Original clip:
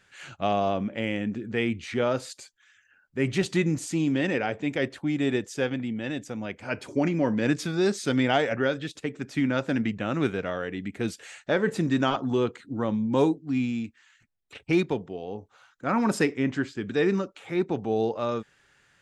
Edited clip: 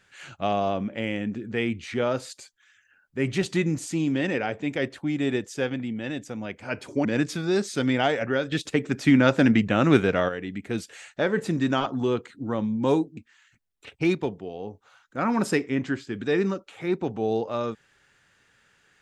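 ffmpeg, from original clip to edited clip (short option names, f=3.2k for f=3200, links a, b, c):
-filter_complex "[0:a]asplit=5[a][b][c][d][e];[a]atrim=end=7.052[f];[b]atrim=start=7.348:end=8.822[g];[c]atrim=start=8.818:end=10.592,asetpts=PTS-STARTPTS,volume=7.5dB[h];[d]atrim=start=10.588:end=13.472[i];[e]atrim=start=13.848[j];[f][g]acrossfade=d=0.004:c1=hsin:c2=hsin[k];[k][h]acrossfade=d=0.004:c1=hsin:c2=hsin[l];[l][i]acrossfade=d=0.004:c1=hsin:c2=hsin[m];[m][j]acrossfade=d=0.004:c1=hsin:c2=hsin"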